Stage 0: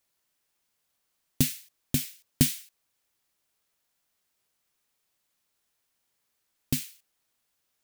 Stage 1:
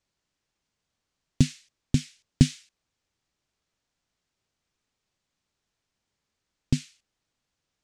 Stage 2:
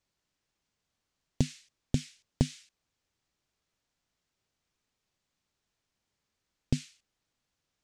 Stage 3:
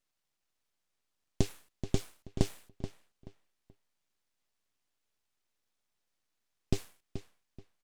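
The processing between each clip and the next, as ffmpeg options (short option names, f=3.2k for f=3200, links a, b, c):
-af "lowpass=f=7.3k:w=0.5412,lowpass=f=7.3k:w=1.3066,lowshelf=f=280:g=11,volume=-2dB"
-af "acompressor=threshold=-20dB:ratio=6,volume=-1.5dB"
-filter_complex "[0:a]aeval=exprs='abs(val(0))':c=same,asplit=2[a][b];[b]adelay=430,lowpass=f=4.1k:p=1,volume=-10.5dB,asplit=2[c][d];[d]adelay=430,lowpass=f=4.1k:p=1,volume=0.26,asplit=2[e][f];[f]adelay=430,lowpass=f=4.1k:p=1,volume=0.26[g];[a][c][e][g]amix=inputs=4:normalize=0"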